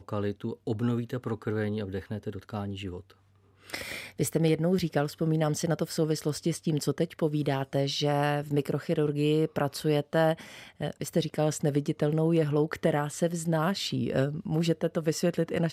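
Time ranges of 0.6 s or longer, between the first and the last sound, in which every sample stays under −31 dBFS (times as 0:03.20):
0:02.97–0:03.70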